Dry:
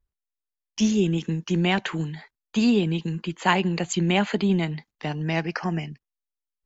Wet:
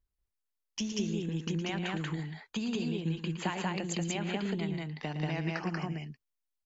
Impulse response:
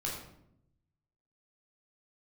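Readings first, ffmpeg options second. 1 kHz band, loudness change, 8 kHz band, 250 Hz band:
-11.5 dB, -10.0 dB, no reading, -10.5 dB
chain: -filter_complex "[0:a]acompressor=threshold=0.0355:ratio=6,asplit=2[s0][s1];[s1]aecho=0:1:113.7|186.6:0.316|0.891[s2];[s0][s2]amix=inputs=2:normalize=0,volume=0.631"

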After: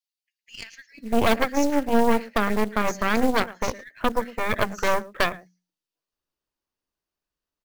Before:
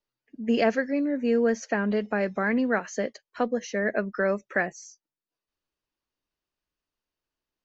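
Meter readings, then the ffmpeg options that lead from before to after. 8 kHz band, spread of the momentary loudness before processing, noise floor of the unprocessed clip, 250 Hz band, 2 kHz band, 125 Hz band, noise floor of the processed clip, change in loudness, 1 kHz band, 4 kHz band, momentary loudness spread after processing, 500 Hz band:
no reading, 9 LU, under -85 dBFS, +1.0 dB, +2.0 dB, +2.5 dB, under -85 dBFS, +2.5 dB, +8.0 dB, +10.0 dB, 18 LU, +1.0 dB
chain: -filter_complex "[0:a]bandreject=f=60:t=h:w=6,bandreject=f=120:t=h:w=6,bandreject=f=180:t=h:w=6,bandreject=f=240:t=h:w=6,bandreject=f=300:t=h:w=6,acrossover=split=2500[s0][s1];[s0]adelay=640[s2];[s2][s1]amix=inputs=2:normalize=0,acrusher=bits=6:mode=log:mix=0:aa=0.000001,asplit=2[s3][s4];[s4]aecho=0:1:110:0.15[s5];[s3][s5]amix=inputs=2:normalize=0,aeval=exprs='0.282*(cos(1*acos(clip(val(0)/0.282,-1,1)))-cos(1*PI/2))+0.141*(cos(6*acos(clip(val(0)/0.282,-1,1)))-cos(6*PI/2))+0.0355*(cos(8*acos(clip(val(0)/0.282,-1,1)))-cos(8*PI/2))':c=same"

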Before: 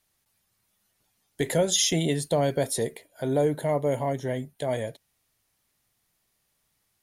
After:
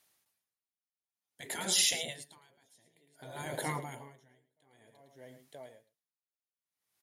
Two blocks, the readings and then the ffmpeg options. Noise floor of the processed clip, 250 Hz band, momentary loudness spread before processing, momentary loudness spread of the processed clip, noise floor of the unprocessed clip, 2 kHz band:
under -85 dBFS, -18.5 dB, 11 LU, 25 LU, -74 dBFS, -4.0 dB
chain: -filter_complex "[0:a]highpass=f=330:p=1,asplit=2[s0][s1];[s1]aecho=0:1:923:0.119[s2];[s0][s2]amix=inputs=2:normalize=0,afftfilt=real='re*lt(hypot(re,im),0.126)':imag='im*lt(hypot(re,im),0.126)':win_size=1024:overlap=0.75,asplit=2[s3][s4];[s4]aecho=0:1:109:0.251[s5];[s3][s5]amix=inputs=2:normalize=0,aeval=exprs='val(0)*pow(10,-36*(0.5-0.5*cos(2*PI*0.55*n/s))/20)':c=same,volume=1.33"

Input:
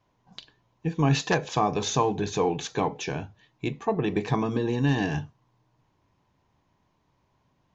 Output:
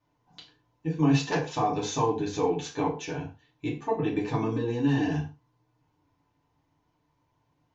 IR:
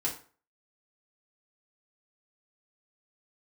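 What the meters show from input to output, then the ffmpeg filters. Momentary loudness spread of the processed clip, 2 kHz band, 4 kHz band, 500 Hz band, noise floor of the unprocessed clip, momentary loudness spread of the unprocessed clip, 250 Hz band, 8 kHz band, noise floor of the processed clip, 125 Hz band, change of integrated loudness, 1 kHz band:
12 LU, -4.0 dB, -4.5 dB, -1.5 dB, -71 dBFS, 10 LU, +0.5 dB, no reading, -74 dBFS, -2.0 dB, -1.5 dB, -2.0 dB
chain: -filter_complex "[1:a]atrim=start_sample=2205,atrim=end_sample=6174[s0];[0:a][s0]afir=irnorm=-1:irlink=0,volume=0.398"

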